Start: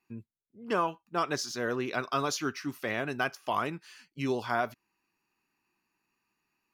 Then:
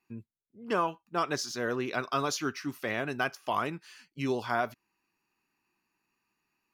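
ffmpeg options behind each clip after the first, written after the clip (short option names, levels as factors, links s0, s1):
-af anull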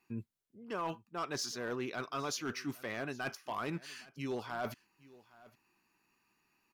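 -af "areverse,acompressor=threshold=0.0112:ratio=6,areverse,asoftclip=type=hard:threshold=0.02,aecho=1:1:814:0.0841,volume=1.58"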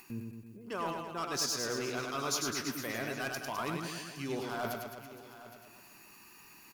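-af "highshelf=f=6200:g=11.5,acompressor=mode=upward:threshold=0.00631:ratio=2.5,aecho=1:1:100|210|331|464.1|610.5:0.631|0.398|0.251|0.158|0.1"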